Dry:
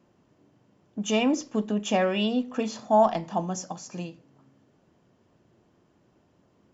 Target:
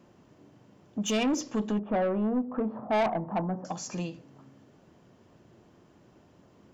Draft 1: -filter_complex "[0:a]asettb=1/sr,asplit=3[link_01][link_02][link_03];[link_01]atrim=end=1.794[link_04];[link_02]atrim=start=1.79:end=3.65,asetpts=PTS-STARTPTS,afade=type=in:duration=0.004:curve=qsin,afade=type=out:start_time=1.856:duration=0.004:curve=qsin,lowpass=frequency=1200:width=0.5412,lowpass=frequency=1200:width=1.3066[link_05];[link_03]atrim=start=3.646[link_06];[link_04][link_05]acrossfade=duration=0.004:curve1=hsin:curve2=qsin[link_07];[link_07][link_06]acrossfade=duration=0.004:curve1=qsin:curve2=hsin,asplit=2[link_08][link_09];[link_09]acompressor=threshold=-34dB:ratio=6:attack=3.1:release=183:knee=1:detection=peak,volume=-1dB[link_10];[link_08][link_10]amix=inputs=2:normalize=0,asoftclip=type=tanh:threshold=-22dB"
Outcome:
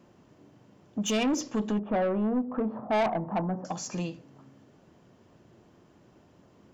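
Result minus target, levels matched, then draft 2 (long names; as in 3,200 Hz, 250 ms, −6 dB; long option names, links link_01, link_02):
downward compressor: peak gain reduction −5.5 dB
-filter_complex "[0:a]asettb=1/sr,asplit=3[link_01][link_02][link_03];[link_01]atrim=end=1.794[link_04];[link_02]atrim=start=1.79:end=3.65,asetpts=PTS-STARTPTS,afade=type=in:duration=0.004:curve=qsin,afade=type=out:start_time=1.856:duration=0.004:curve=qsin,lowpass=frequency=1200:width=0.5412,lowpass=frequency=1200:width=1.3066[link_05];[link_03]atrim=start=3.646[link_06];[link_04][link_05]acrossfade=duration=0.004:curve1=hsin:curve2=qsin[link_07];[link_07][link_06]acrossfade=duration=0.004:curve1=qsin:curve2=hsin,asplit=2[link_08][link_09];[link_09]acompressor=threshold=-40.5dB:ratio=6:attack=3.1:release=183:knee=1:detection=peak,volume=-1dB[link_10];[link_08][link_10]amix=inputs=2:normalize=0,asoftclip=type=tanh:threshold=-22dB"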